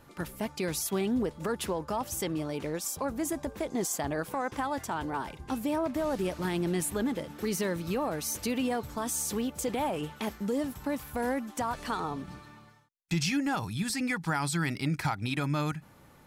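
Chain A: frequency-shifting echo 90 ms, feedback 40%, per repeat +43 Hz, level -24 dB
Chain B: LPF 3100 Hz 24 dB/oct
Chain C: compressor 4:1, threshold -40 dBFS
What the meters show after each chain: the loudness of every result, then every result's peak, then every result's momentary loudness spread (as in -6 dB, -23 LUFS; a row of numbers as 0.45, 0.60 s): -32.0, -33.0, -42.0 LUFS; -18.0, -18.5, -24.0 dBFS; 5, 6, 4 LU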